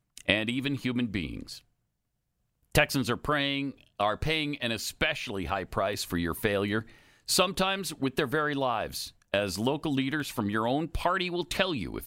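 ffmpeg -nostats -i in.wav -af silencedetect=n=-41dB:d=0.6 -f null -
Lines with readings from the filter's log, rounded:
silence_start: 1.58
silence_end: 2.75 | silence_duration: 1.17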